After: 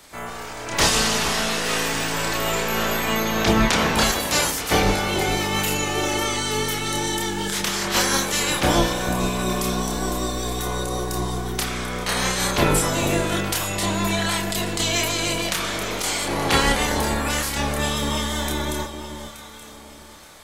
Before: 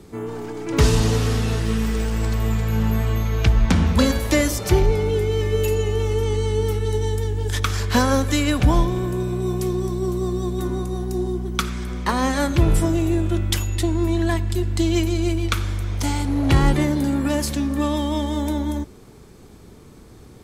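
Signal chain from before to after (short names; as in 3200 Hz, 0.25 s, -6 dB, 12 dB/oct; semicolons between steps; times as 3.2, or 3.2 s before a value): spectral limiter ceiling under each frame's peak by 26 dB; on a send: echo with dull and thin repeats by turns 0.438 s, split 980 Hz, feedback 55%, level -8 dB; on the sum: chorus voices 4, 0.11 Hz, delay 29 ms, depth 3.5 ms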